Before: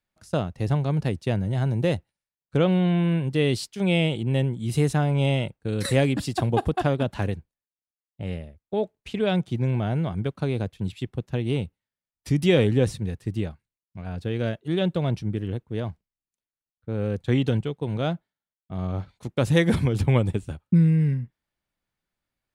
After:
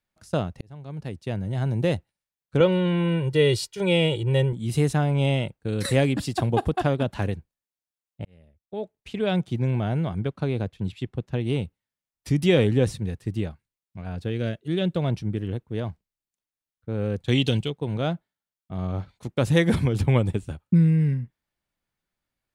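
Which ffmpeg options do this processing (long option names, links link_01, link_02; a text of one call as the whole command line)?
ffmpeg -i in.wav -filter_complex "[0:a]asettb=1/sr,asplit=3[link_01][link_02][link_03];[link_01]atrim=end=2.604[link_04];[link_02]atrim=start=2.6:end=4.53,asetpts=PTS-STARTPTS,afade=type=in:duration=0.004:curve=qsin,afade=type=out:start_time=1.926:duration=0.004:curve=qsin,aecho=1:1:2.1:0.87,atrim=end_sample=85113[link_05];[link_03]atrim=start=4.526[link_06];[link_04][link_05]acrossfade=duration=0.004:curve1=hsin:curve2=qsin[link_07];[link_07][link_06]acrossfade=duration=0.004:curve1=qsin:curve2=hsin,asettb=1/sr,asplit=3[link_08][link_09][link_10];[link_08]atrim=end=10.184[link_11];[link_09]atrim=start=10.18:end=11.41,asetpts=PTS-STARTPTS,afade=type=in:duration=0.004:curve=qsin,afade=type=out:start_time=1.226:duration=0.004:curve=qsin,highshelf=frequency=7800:gain=-9.5[link_12];[link_10]atrim=start=11.406[link_13];[link_11][link_12]acrossfade=duration=0.004:curve1=hsin:curve2=qsin[link_14];[link_14][link_13]acrossfade=duration=0.004:curve1=qsin:curve2=hsin,asettb=1/sr,asplit=3[link_15][link_16][link_17];[link_15]atrim=end=14.304[link_18];[link_16]atrim=start=14.3:end=14.96,asetpts=PTS-STARTPTS,afade=type=in:duration=0.004:curve=qsin,afade=type=out:start_time=0.656:duration=0.004:curve=qsin,equalizer=frequency=910:width_type=o:width=1.1:gain=-7[link_19];[link_17]atrim=start=14.956[link_20];[link_18][link_19]acrossfade=duration=0.004:curve1=hsin:curve2=qsin[link_21];[link_21][link_20]acrossfade=duration=0.004:curve1=qsin:curve2=hsin,asettb=1/sr,asplit=3[link_22][link_23][link_24];[link_22]atrim=end=17.284[link_25];[link_23]atrim=start=17.28:end=17.7,asetpts=PTS-STARTPTS,afade=type=in:duration=0.004:curve=qsin,afade=type=out:start_time=0.416:duration=0.004:curve=qsin,highshelf=frequency=2200:width_type=q:width=1.5:gain=8.5[link_26];[link_24]atrim=start=17.696[link_27];[link_25][link_26]acrossfade=duration=0.004:curve1=hsin:curve2=qsin[link_28];[link_28][link_27]acrossfade=duration=0.004:curve1=qsin:curve2=hsin,asplit=3[link_29][link_30][link_31];[link_29]atrim=end=0.61,asetpts=PTS-STARTPTS,afade=type=out:start_time=0.606:duration=0.004:curve=hsin[link_32];[link_30]atrim=start=0.61:end=8.25,asetpts=PTS-STARTPTS,afade=type=in:duration=1.2,afade=type=out:start_time=7.636:duration=0.004:curve=hsin[link_33];[link_31]atrim=start=8.25,asetpts=PTS-STARTPTS,afade=type=in:duration=1.15[link_34];[link_32][link_33][link_34]concat=n=3:v=0:a=1" out.wav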